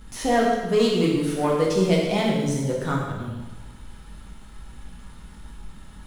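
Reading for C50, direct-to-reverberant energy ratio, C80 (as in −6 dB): 1.5 dB, −3.5 dB, 3.5 dB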